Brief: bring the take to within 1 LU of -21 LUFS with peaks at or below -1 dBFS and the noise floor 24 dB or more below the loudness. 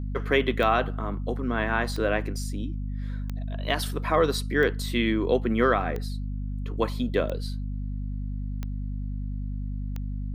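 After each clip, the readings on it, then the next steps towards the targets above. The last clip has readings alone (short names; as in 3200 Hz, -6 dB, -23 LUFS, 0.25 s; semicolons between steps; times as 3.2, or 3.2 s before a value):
clicks 8; hum 50 Hz; harmonics up to 250 Hz; hum level -28 dBFS; loudness -28.0 LUFS; peak -9.0 dBFS; loudness target -21.0 LUFS
-> de-click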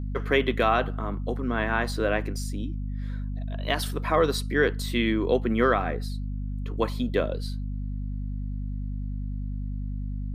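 clicks 0; hum 50 Hz; harmonics up to 250 Hz; hum level -28 dBFS
-> notches 50/100/150/200/250 Hz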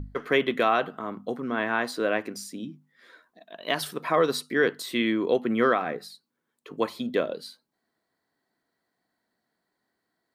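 hum none; loudness -26.5 LUFS; peak -10.0 dBFS; loudness target -21.0 LUFS
-> gain +5.5 dB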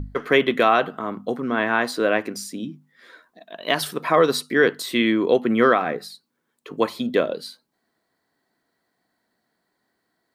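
loudness -21.0 LUFS; peak -4.5 dBFS; noise floor -75 dBFS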